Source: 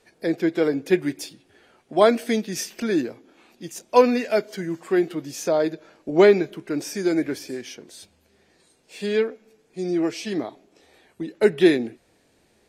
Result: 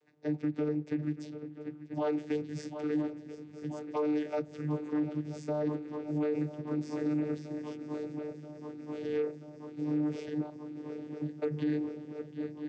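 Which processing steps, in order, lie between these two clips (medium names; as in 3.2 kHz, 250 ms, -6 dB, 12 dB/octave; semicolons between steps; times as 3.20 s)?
shuffle delay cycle 983 ms, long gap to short 3:1, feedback 79%, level -16 dB; vocoder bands 16, saw 150 Hz; peak limiter -17 dBFS, peak gain reduction 11.5 dB; trim -7 dB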